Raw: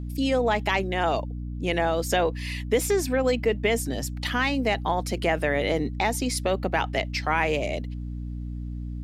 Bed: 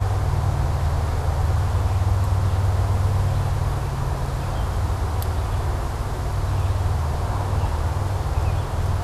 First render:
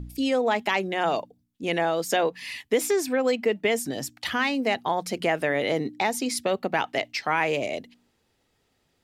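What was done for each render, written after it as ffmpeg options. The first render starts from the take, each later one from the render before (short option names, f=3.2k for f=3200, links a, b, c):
-af "bandreject=f=60:t=h:w=4,bandreject=f=120:t=h:w=4,bandreject=f=180:t=h:w=4,bandreject=f=240:t=h:w=4,bandreject=f=300:t=h:w=4"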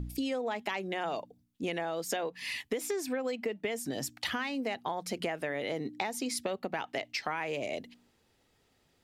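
-af "acompressor=threshold=-31dB:ratio=6"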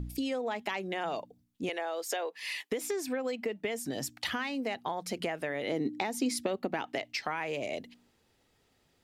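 -filter_complex "[0:a]asettb=1/sr,asplit=3[a][b][c];[a]atrim=end=1.694[d];[b]atrim=start=1.69:end=2.72,asetpts=PTS-STARTPTS,afade=t=in:d=0.004:c=qsin,afade=t=out:st=1.026:d=0.004:c=qsin,highpass=f=370:w=0.5412,highpass=f=370:w=1.3066[e];[c]atrim=start=2.716[f];[d][e]acrossfade=d=0.004:c1=hsin:c2=qsin[g];[g][f]acrossfade=d=0.004:c1=qsin:c2=hsin,asettb=1/sr,asplit=3[h][i][j];[h]atrim=end=5.674[k];[i]atrim=start=5.67:end=6.96,asetpts=PTS-STARTPTS,afade=t=in:d=0.004:c=qsin,afade=t=out:st=1.286:d=0.004:c=qsin,equalizer=f=290:t=o:w=1:g=6.5[l];[j]atrim=start=6.956[m];[k][l]acrossfade=d=0.004:c1=hsin:c2=qsin[n];[n][m]acrossfade=d=0.004:c1=qsin:c2=hsin"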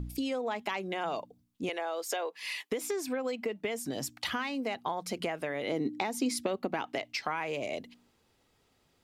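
-af "equalizer=f=1.1k:t=o:w=0.4:g=3.5,bandreject=f=1.8k:w=18"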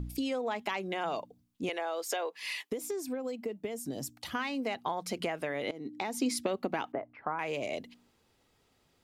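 -filter_complex "[0:a]asettb=1/sr,asplit=3[a][b][c];[a]atrim=end=2.704[d];[b]atrim=start=2.7:end=4.35,asetpts=PTS-STARTPTS,afade=t=in:d=0.004:c=qsin,afade=t=out:st=1.646:d=0.004:c=qsin,equalizer=f=2k:w=0.43:g=-10.5[e];[c]atrim=start=4.346[f];[d][e]acrossfade=d=0.004:c1=hsin:c2=qsin[g];[g][f]acrossfade=d=0.004:c1=qsin:c2=hsin,asettb=1/sr,asplit=3[h][i][j];[h]atrim=end=6.924[k];[i]atrim=start=6.92:end=7.39,asetpts=PTS-STARTPTS,afade=t=in:d=0.004:c=qsin,afade=t=out:st=0.466:d=0.004:c=qsin,lowpass=f=1.4k:w=0.5412,lowpass=f=1.4k:w=1.3066[l];[j]atrim=start=7.386[m];[k][l]acrossfade=d=0.004:c1=hsin:c2=qsin[n];[n][m]acrossfade=d=0.004:c1=qsin:c2=hsin,asplit=2[o][p];[o]atrim=end=5.71,asetpts=PTS-STARTPTS,afade=t=out:st=5.706:d=0.004:c=hsin:silence=0.11885[q];[p]atrim=start=5.71,asetpts=PTS-STARTPTS,afade=t=in:d=0.48:silence=0.11885[r];[q][r]concat=n=2:v=0:a=1"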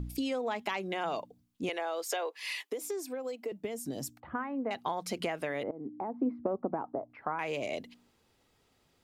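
-filter_complex "[0:a]asettb=1/sr,asplit=3[a][b][c];[a]atrim=end=2.044[d];[b]atrim=start=2.04:end=3.52,asetpts=PTS-STARTPTS,afade=t=in:d=0.004:c=qsin,afade=t=out:st=1.476:d=0.004:c=qsin,highpass=f=300:w=0.5412,highpass=f=300:w=1.3066[e];[c]atrim=start=3.516[f];[d][e]acrossfade=d=0.004:c1=hsin:c2=qsin[g];[g][f]acrossfade=d=0.004:c1=qsin:c2=hsin,asettb=1/sr,asplit=3[h][i][j];[h]atrim=end=4.204[k];[i]atrim=start=4.2:end=4.71,asetpts=PTS-STARTPTS,afade=t=in:d=0.004:c=qsin,afade=t=out:st=0.506:d=0.004:c=qsin,lowpass=f=1.5k:w=0.5412,lowpass=f=1.5k:w=1.3066[l];[j]atrim=start=4.706[m];[k][l]acrossfade=d=0.004:c1=hsin:c2=qsin[n];[n][m]acrossfade=d=0.004:c1=qsin:c2=hsin,asettb=1/sr,asplit=3[o][p][q];[o]atrim=end=5.634[r];[p]atrim=start=5.63:end=7.1,asetpts=PTS-STARTPTS,afade=t=in:d=0.004:c=qsin,afade=t=out:st=1.466:d=0.004:c=qsin,lowpass=f=1.1k:w=0.5412,lowpass=f=1.1k:w=1.3066[s];[q]atrim=start=7.096[t];[r][s]acrossfade=d=0.004:c1=hsin:c2=qsin[u];[u][t]acrossfade=d=0.004:c1=qsin:c2=hsin"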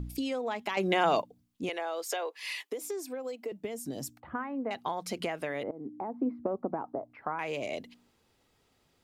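-filter_complex "[0:a]asplit=3[a][b][c];[a]atrim=end=0.772[d];[b]atrim=start=0.768:end=1.222,asetpts=PTS-STARTPTS,volume=8.5dB[e];[c]atrim=start=1.218[f];[d][e]acrossfade=d=0.004:c1=hsin:c2=hsin[g];[g][f]acrossfade=d=0.004:c1=hsin:c2=hsin"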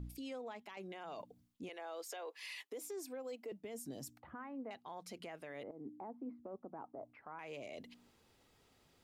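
-af "areverse,acompressor=threshold=-40dB:ratio=6,areverse,alimiter=level_in=14dB:limit=-24dB:level=0:latency=1:release=271,volume=-14dB"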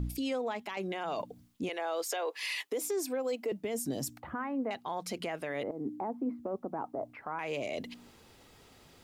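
-af "volume=12dB"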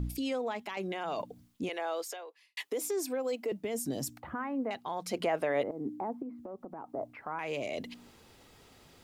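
-filter_complex "[0:a]asettb=1/sr,asplit=3[a][b][c];[a]atrim=end=5.134[d];[b]atrim=start=5.13:end=5.62,asetpts=PTS-STARTPTS,afade=t=in:d=0.004:c=qsin,afade=t=out:st=0.486:d=0.004:c=qsin,equalizer=f=680:w=0.58:g=8.5[e];[c]atrim=start=5.616[f];[d][e]acrossfade=d=0.004:c1=hsin:c2=qsin[g];[g][f]acrossfade=d=0.004:c1=qsin:c2=hsin,asettb=1/sr,asplit=3[h][i][j];[h]atrim=end=6.224[k];[i]atrim=start=6.22:end=6.93,asetpts=PTS-STARTPTS,afade=t=in:d=0.004:c=qsin,afade=t=out:st=0.706:d=0.004:c=qsin,acompressor=threshold=-42dB:ratio=2.5:attack=3.2:release=140:knee=1:detection=peak[l];[j]atrim=start=6.926[m];[k][l]acrossfade=d=0.004:c1=hsin:c2=qsin[n];[n][m]acrossfade=d=0.004:c1=qsin:c2=hsin,asplit=2[o][p];[o]atrim=end=2.57,asetpts=PTS-STARTPTS,afade=t=out:st=1.92:d=0.65:c=qua[q];[p]atrim=start=2.57,asetpts=PTS-STARTPTS,afade=t=in:d=0.004:c=hsin[r];[q][r]concat=n=2:v=0:a=1"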